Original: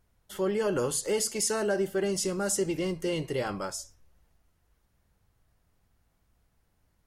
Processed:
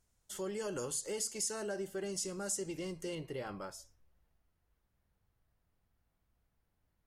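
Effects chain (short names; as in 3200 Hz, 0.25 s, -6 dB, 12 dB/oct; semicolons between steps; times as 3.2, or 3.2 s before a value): bell 7300 Hz +13.5 dB 1.2 oct, from 0.85 s +7 dB, from 3.15 s -6 dB; compressor 1.5:1, threshold -32 dBFS, peak gain reduction 5 dB; gain -8.5 dB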